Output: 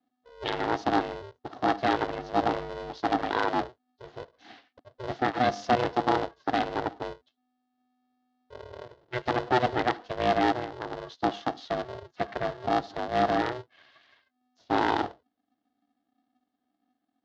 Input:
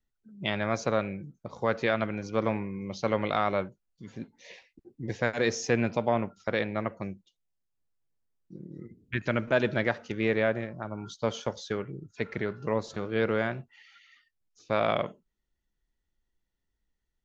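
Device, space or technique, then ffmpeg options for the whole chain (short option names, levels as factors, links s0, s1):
ring modulator pedal into a guitar cabinet: -filter_complex "[0:a]asettb=1/sr,asplit=3[s0][s1][s2];[s0]atrim=end=2.894[s3];[s1]atrim=start=2.89:end=3.56,asetpts=PTS-STARTPTS,afade=t=in:d=0.004:c=qsin,afade=t=out:st=0.666:d=0.004:c=qsin,lowshelf=f=280:g=-5.5[s4];[s2]atrim=start=3.556[s5];[s3][s4]acrossfade=d=0.004:c1=hsin:c2=qsin[s6];[s6][s5]acrossfade=d=0.004:c1=qsin:c2=hsin,aeval=exprs='val(0)*sgn(sin(2*PI*250*n/s))':c=same,highpass=95,equalizer=f=170:t=q:w=4:g=-9,equalizer=f=290:t=q:w=4:g=5,equalizer=f=710:t=q:w=4:g=7,equalizer=f=2400:t=q:w=4:g=-9,lowpass=f=4500:w=0.5412,lowpass=f=4500:w=1.3066"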